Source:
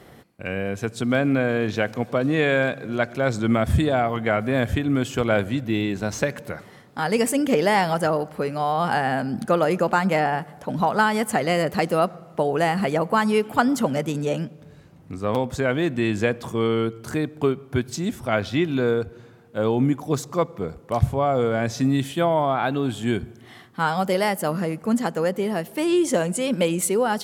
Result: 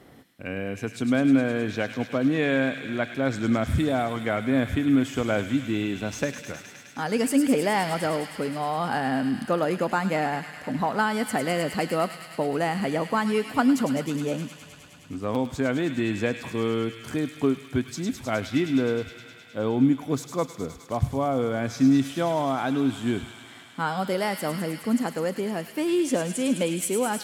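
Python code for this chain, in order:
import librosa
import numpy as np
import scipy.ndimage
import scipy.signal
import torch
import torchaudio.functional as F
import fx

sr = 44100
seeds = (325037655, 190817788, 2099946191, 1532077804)

p1 = fx.peak_eq(x, sr, hz=270.0, db=9.0, octaves=0.27)
p2 = p1 + fx.echo_wet_highpass(p1, sr, ms=104, feedback_pct=84, hz=2200.0, wet_db=-6, dry=0)
y = p2 * librosa.db_to_amplitude(-5.0)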